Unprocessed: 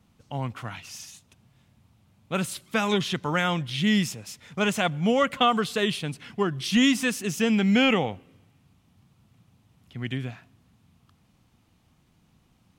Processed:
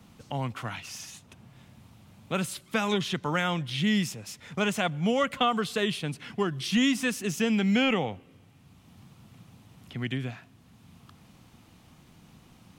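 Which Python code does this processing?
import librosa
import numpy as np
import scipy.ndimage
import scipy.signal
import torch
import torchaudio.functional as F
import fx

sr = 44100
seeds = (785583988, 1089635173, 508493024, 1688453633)

y = fx.band_squash(x, sr, depth_pct=40)
y = y * 10.0 ** (-2.5 / 20.0)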